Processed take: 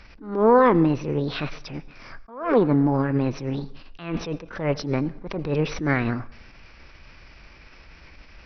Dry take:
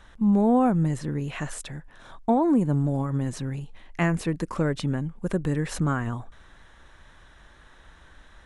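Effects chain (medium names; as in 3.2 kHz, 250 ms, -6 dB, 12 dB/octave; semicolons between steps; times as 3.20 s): resampled via 11.025 kHz; formant shift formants +6 st; on a send at -20 dB: reverberation RT60 0.75 s, pre-delay 75 ms; on the sum: attacks held to a fixed rise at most 110 dB/s; trim +4.5 dB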